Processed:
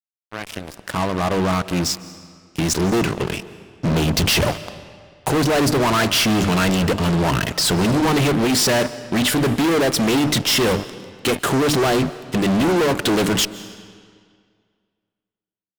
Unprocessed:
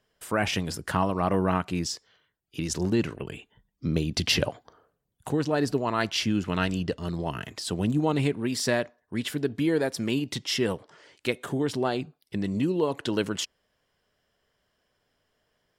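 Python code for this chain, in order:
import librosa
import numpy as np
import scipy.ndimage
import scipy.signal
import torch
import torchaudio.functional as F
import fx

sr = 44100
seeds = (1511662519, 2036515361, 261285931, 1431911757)

y = fx.fade_in_head(x, sr, length_s=5.17)
y = fx.hum_notches(y, sr, base_hz=50, count=6)
y = fx.fuzz(y, sr, gain_db=40.0, gate_db=-46.0)
y = fx.rev_freeverb(y, sr, rt60_s=2.0, hf_ratio=0.85, predelay_ms=110, drr_db=16.0)
y = y * 10.0 ** (-2.5 / 20.0)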